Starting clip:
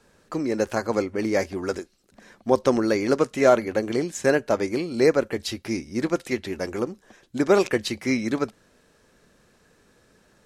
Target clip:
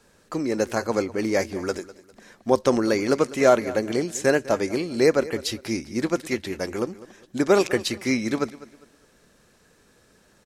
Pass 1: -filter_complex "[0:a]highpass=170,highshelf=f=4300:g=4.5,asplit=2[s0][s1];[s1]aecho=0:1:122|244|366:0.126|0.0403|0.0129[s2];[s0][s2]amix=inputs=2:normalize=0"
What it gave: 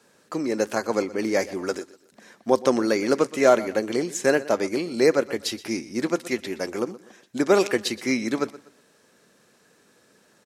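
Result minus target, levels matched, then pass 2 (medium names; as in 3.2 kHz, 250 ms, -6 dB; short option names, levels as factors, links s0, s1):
echo 79 ms early; 125 Hz band -4.5 dB
-filter_complex "[0:a]highshelf=f=4300:g=4.5,asplit=2[s0][s1];[s1]aecho=0:1:201|402|603:0.126|0.0403|0.0129[s2];[s0][s2]amix=inputs=2:normalize=0"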